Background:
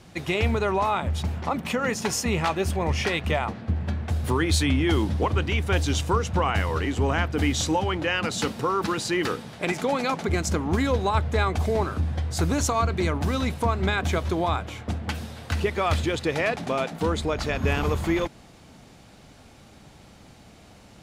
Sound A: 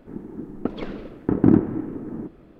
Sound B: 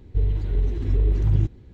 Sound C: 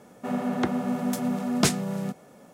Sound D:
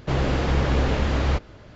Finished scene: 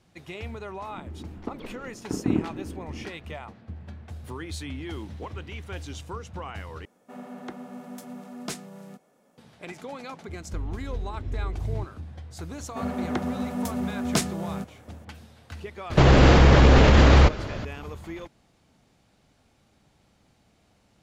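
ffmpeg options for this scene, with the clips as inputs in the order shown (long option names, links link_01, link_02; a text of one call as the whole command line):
ffmpeg -i bed.wav -i cue0.wav -i cue1.wav -i cue2.wav -i cue3.wav -filter_complex "[2:a]asplit=2[link_01][link_02];[3:a]asplit=2[link_03][link_04];[0:a]volume=-13.5dB[link_05];[link_01]highpass=1300[link_06];[link_03]equalizer=frequency=93:width_type=o:width=1.6:gain=-8.5[link_07];[4:a]alimiter=level_in=18.5dB:limit=-1dB:release=50:level=0:latency=1[link_08];[link_05]asplit=2[link_09][link_10];[link_09]atrim=end=6.854[link_11];[link_07]atrim=end=2.53,asetpts=PTS-STARTPTS,volume=-11.5dB[link_12];[link_10]atrim=start=9.376[link_13];[1:a]atrim=end=2.59,asetpts=PTS-STARTPTS,volume=-9dB,afade=type=in:duration=0.004:curve=hsin,afade=type=out:start_time=2.586:duration=0.004:curve=hsin,adelay=820[link_14];[link_06]atrim=end=1.73,asetpts=PTS-STARTPTS,volume=-6.5dB,afade=type=in:duration=0.004:curve=hsin,afade=type=out:start_time=1.726:duration=0.004:curve=hsin,adelay=194481S[link_15];[link_02]atrim=end=1.73,asetpts=PTS-STARTPTS,volume=-11dB,afade=type=in:duration=0.004:curve=hsin,afade=type=out:start_time=1.726:duration=0.004:curve=hsin,adelay=10380[link_16];[link_04]atrim=end=2.53,asetpts=PTS-STARTPTS,volume=-2.5dB,afade=type=in:duration=0.004:curve=hsin,afade=type=out:start_time=2.526:duration=0.004:curve=hsin,adelay=552132S[link_17];[link_08]atrim=end=1.75,asetpts=PTS-STARTPTS,volume=-5.5dB,afade=type=in:duration=0.004:curve=hsin,afade=type=out:start_time=1.746:duration=0.004:curve=hsin,adelay=15900[link_18];[link_11][link_12]acrossfade=duration=0.004:curve1=hsin:curve2=hsin[link_19];[link_19][link_13]acrossfade=duration=0.004:curve1=hsin:curve2=hsin[link_20];[link_20][link_14][link_15][link_16][link_17][link_18]amix=inputs=6:normalize=0" out.wav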